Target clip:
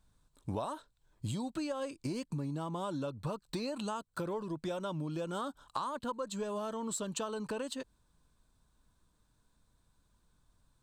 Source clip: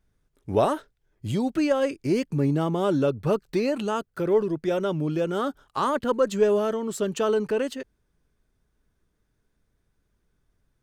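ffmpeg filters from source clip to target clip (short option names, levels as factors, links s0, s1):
-af "equalizer=f=400:t=o:w=0.33:g=-9,equalizer=f=1000:t=o:w=0.33:g=9,equalizer=f=2000:t=o:w=0.33:g=-7,equalizer=f=4000:t=o:w=0.33:g=9,equalizer=f=8000:t=o:w=0.33:g=11,acompressor=threshold=0.02:ratio=12"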